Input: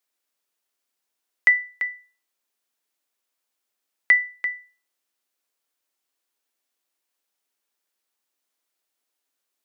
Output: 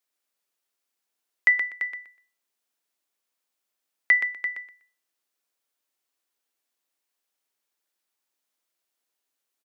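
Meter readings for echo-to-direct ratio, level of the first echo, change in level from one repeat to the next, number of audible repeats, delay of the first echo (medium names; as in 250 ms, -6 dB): -7.0 dB, -7.0 dB, -14.0 dB, 3, 123 ms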